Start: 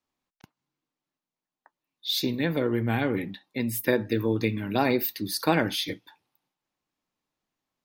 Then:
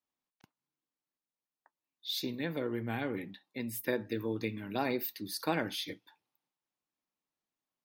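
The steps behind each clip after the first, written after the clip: low shelf 100 Hz -8 dB; gain -8.5 dB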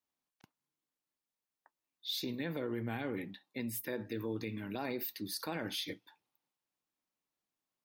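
limiter -28 dBFS, peak gain reduction 10 dB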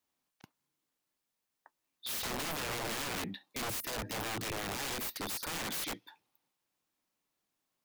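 wrapped overs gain 38 dB; gain +6 dB

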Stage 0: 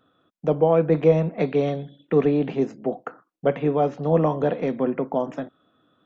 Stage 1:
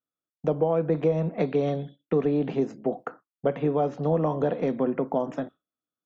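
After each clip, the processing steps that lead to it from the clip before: expander -35 dBFS; dynamic EQ 2400 Hz, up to -4 dB, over -43 dBFS, Q 1.3; compressor 4:1, threshold -20 dBFS, peak gain reduction 8 dB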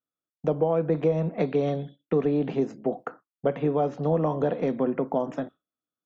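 nothing audible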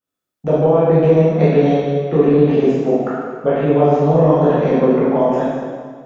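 reverb RT60 1.7 s, pre-delay 6 ms, DRR -10 dB; gain +2 dB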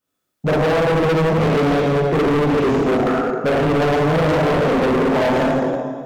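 in parallel at +1.5 dB: limiter -9 dBFS, peak gain reduction 7.5 dB; on the sum: hard clip -15 dBFS, distortion -5 dB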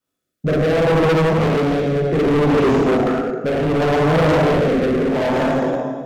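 rotary speaker horn 0.65 Hz; gain +2 dB

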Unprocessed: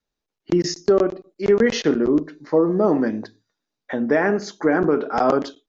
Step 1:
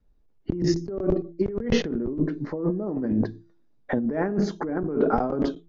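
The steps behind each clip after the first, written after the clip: tilt -4.5 dB/oct; de-hum 169.2 Hz, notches 2; negative-ratio compressor -21 dBFS, ratio -1; gain -4.5 dB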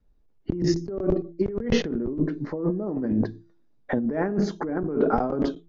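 nothing audible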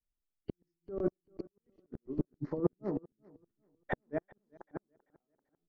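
flipped gate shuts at -18 dBFS, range -37 dB; on a send: feedback echo 0.389 s, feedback 49%, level -10 dB; on the sum: upward expander 2.5:1, over -43 dBFS; gain +1 dB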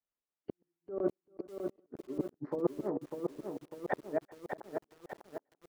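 band-pass 730 Hz, Q 0.7; lo-fi delay 0.598 s, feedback 55%, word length 10-bit, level -5.5 dB; gain +3.5 dB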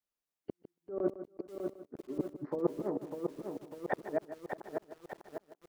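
echo 0.154 s -13 dB

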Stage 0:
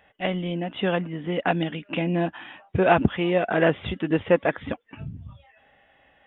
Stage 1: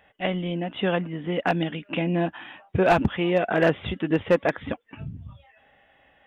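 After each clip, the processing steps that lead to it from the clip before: overloaded stage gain 11.5 dB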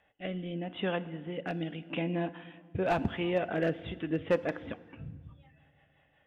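rotary speaker horn 0.85 Hz, later 5.5 Hz, at 3.64; FDN reverb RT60 1.6 s, low-frequency decay 1.45×, high-frequency decay 0.8×, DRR 14.5 dB; gain -7 dB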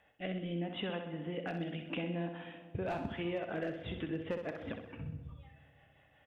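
compressor 5:1, threshold -37 dBFS, peak gain reduction 14 dB; on a send: feedback echo 64 ms, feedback 50%, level -7.5 dB; on the sum: gain +1 dB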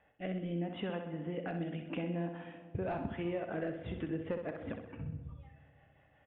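air absorption 430 m; gain +1.5 dB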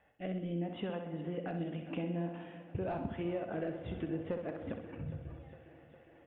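dynamic EQ 1900 Hz, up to -4 dB, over -55 dBFS, Q 1.1; thinning echo 0.408 s, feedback 77%, high-pass 170 Hz, level -16 dB

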